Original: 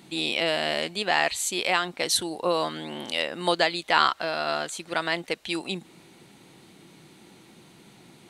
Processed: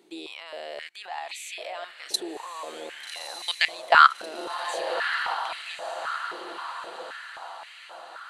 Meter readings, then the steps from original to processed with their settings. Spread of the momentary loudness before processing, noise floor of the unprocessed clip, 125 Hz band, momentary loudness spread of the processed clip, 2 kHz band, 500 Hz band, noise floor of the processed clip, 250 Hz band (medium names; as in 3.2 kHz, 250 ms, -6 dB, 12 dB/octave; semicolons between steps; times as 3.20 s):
8 LU, -53 dBFS, under -20 dB, 20 LU, +0.5 dB, -6.0 dB, -47 dBFS, -11.0 dB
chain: level held to a coarse grid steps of 21 dB; echo that smears into a reverb 1208 ms, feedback 51%, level -6 dB; step-sequenced high-pass 3.8 Hz 380–2200 Hz